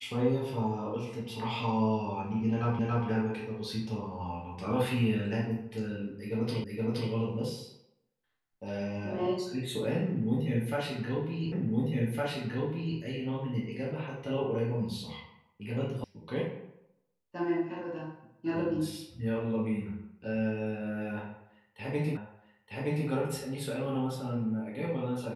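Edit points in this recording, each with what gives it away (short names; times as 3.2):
2.79 repeat of the last 0.28 s
6.64 repeat of the last 0.47 s
11.52 repeat of the last 1.46 s
16.04 sound cut off
22.17 repeat of the last 0.92 s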